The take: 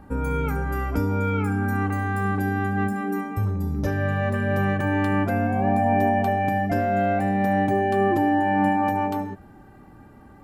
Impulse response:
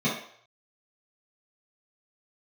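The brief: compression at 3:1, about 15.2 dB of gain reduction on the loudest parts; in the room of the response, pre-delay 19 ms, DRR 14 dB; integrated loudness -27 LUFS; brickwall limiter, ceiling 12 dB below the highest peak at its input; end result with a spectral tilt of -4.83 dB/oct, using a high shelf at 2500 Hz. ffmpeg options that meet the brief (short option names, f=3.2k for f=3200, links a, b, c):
-filter_complex "[0:a]highshelf=f=2.5k:g=-4.5,acompressor=threshold=-39dB:ratio=3,alimiter=level_in=12.5dB:limit=-24dB:level=0:latency=1,volume=-12.5dB,asplit=2[a][b];[1:a]atrim=start_sample=2205,adelay=19[c];[b][c]afir=irnorm=-1:irlink=0,volume=-26dB[d];[a][d]amix=inputs=2:normalize=0,volume=17dB"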